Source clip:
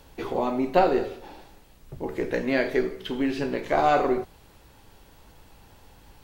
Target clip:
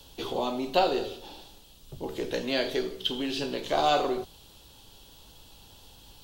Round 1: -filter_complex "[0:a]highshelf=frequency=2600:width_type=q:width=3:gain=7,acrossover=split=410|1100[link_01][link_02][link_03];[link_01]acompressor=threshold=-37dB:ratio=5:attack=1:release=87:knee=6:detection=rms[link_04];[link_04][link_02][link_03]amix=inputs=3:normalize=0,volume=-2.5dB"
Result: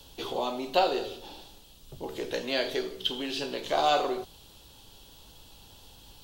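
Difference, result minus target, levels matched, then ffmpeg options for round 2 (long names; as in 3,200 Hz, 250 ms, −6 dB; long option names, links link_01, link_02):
downward compressor: peak gain reduction +7 dB
-filter_complex "[0:a]highshelf=frequency=2600:width_type=q:width=3:gain=7,acrossover=split=410|1100[link_01][link_02][link_03];[link_01]acompressor=threshold=-28.5dB:ratio=5:attack=1:release=87:knee=6:detection=rms[link_04];[link_04][link_02][link_03]amix=inputs=3:normalize=0,volume=-2.5dB"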